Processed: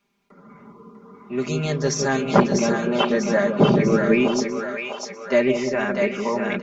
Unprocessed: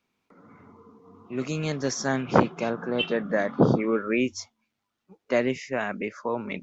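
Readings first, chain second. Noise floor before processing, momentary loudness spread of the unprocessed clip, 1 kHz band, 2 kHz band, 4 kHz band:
-81 dBFS, 9 LU, +5.0 dB, +5.5 dB, +5.0 dB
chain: comb 5 ms, depth 81%; in parallel at -9 dB: soft clip -18.5 dBFS, distortion -9 dB; on the sum: split-band echo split 540 Hz, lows 0.162 s, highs 0.646 s, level -4 dB

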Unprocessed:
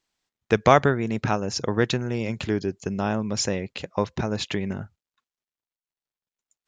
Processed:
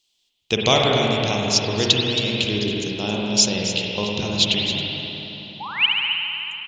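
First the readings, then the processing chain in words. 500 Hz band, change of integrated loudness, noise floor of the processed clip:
+1.0 dB, +5.0 dB, -69 dBFS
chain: painted sound rise, 5.6–5.86, 780–3200 Hz -26 dBFS; resonant high shelf 2300 Hz +11.5 dB, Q 3; on a send: echo 0.272 s -11 dB; on the sum: spring tank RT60 3.5 s, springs 48/53 ms, chirp 55 ms, DRR -2.5 dB; gain -3 dB

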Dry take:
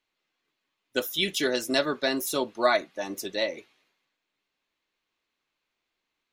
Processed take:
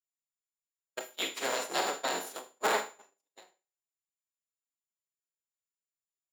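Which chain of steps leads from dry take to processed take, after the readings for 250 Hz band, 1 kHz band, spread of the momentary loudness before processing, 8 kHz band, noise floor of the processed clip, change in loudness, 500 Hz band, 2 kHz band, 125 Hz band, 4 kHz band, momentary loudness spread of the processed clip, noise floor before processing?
-14.5 dB, -2.5 dB, 9 LU, -2.0 dB, under -85 dBFS, -5.5 dB, -9.5 dB, -6.0 dB, -15.5 dB, -7.5 dB, 13 LU, -83 dBFS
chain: cycle switcher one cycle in 3, inverted; HPF 380 Hz 12 dB/oct; whine 7100 Hz -35 dBFS; dynamic EQ 740 Hz, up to +3 dB, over -37 dBFS, Q 0.86; pre-echo 93 ms -22.5 dB; Schroeder reverb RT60 0.95 s, combs from 33 ms, DRR 1.5 dB; gate -25 dBFS, range -58 dB; ending taper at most 170 dB/s; gain -8.5 dB

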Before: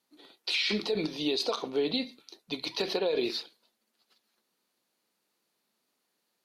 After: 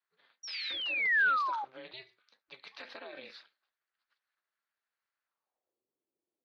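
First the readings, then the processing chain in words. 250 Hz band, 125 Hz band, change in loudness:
-25.0 dB, under -20 dB, +1.5 dB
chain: ring modulator 130 Hz; painted sound fall, 0.43–1.65, 790–5800 Hz -25 dBFS; band-pass sweep 1600 Hz -> 350 Hz, 5.22–5.85

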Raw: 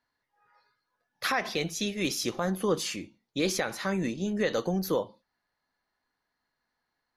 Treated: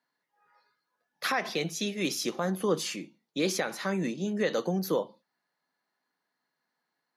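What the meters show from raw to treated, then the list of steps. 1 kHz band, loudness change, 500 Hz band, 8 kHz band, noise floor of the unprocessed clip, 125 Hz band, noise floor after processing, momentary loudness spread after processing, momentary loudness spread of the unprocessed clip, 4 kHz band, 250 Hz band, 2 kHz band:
-0.5 dB, -0.5 dB, 0.0 dB, -1.0 dB, -83 dBFS, -1.0 dB, -84 dBFS, 6 LU, 5 LU, -1.0 dB, -0.5 dB, -1.0 dB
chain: Chebyshev high-pass 150 Hz, order 4

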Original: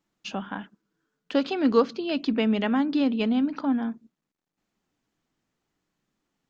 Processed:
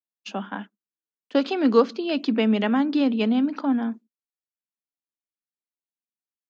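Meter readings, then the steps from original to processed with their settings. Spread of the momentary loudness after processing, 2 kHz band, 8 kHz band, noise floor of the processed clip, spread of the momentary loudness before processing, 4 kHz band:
15 LU, +2.0 dB, n/a, under -85 dBFS, 13 LU, +2.0 dB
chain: expander -33 dBFS; elliptic high-pass 200 Hz; gain +3 dB

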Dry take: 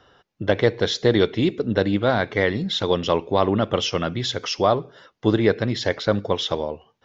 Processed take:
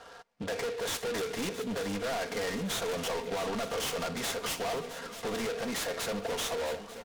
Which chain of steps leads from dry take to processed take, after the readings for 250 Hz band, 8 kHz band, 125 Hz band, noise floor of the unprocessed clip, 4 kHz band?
-14.5 dB, n/a, -18.5 dB, -71 dBFS, -10.0 dB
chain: low-pass opened by the level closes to 2800 Hz; resonant low shelf 420 Hz -8 dB, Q 1.5; comb 4.3 ms, depth 77%; in parallel at 0 dB: compressor, threshold -30 dBFS, peak gain reduction 18 dB; on the sum: limiter -11.5 dBFS, peak gain reduction 8.5 dB; soft clip -29 dBFS, distortion -5 dB; on a send: swung echo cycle 0.889 s, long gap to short 3:1, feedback 54%, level -13.5 dB; on the sum: noise-modulated delay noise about 2600 Hz, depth 0.053 ms; gain -2 dB

